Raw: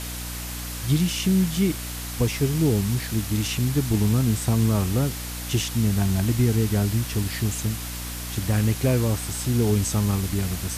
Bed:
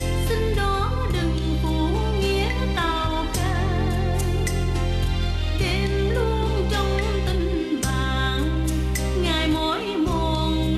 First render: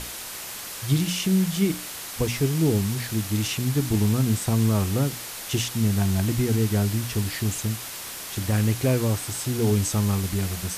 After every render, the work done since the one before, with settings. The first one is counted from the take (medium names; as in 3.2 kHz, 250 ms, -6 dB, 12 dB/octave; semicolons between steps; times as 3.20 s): hum notches 60/120/180/240/300 Hz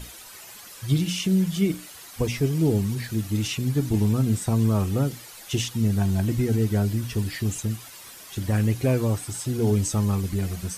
noise reduction 11 dB, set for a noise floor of -36 dBFS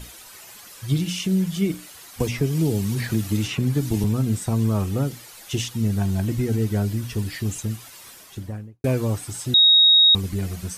2.20–4.04 s: three bands compressed up and down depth 100%; 8.09–8.84 s: studio fade out; 9.54–10.15 s: bleep 3.77 kHz -10.5 dBFS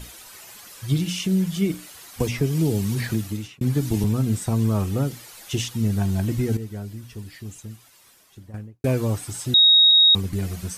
3.07–3.61 s: fade out; 6.57–8.54 s: gain -10.5 dB; 9.91–10.33 s: three bands expanded up and down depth 70%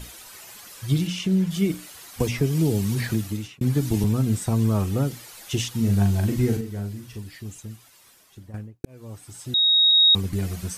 1.07–1.51 s: treble shelf 6.3 kHz -10 dB; 5.71–7.18 s: doubling 40 ms -5 dB; 8.85–10.26 s: fade in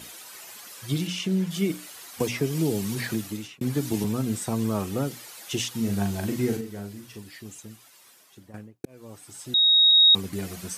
Bessel high-pass 220 Hz, order 2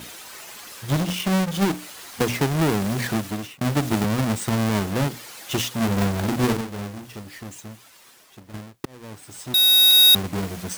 square wave that keeps the level; word length cut 12-bit, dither triangular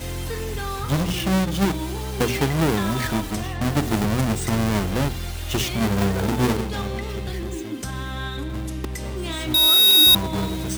add bed -7 dB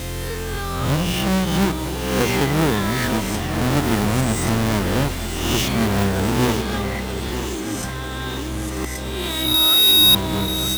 reverse spectral sustain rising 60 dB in 1.07 s; thinning echo 938 ms, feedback 71%, high-pass 180 Hz, level -10 dB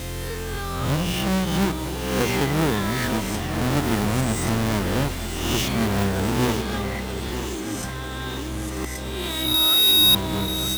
trim -3 dB